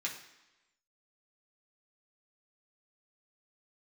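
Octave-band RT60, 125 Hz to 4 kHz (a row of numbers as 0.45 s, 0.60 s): 0.85 s, 0.95 s, 1.0 s, 1.0 s, 1.1 s, 1.0 s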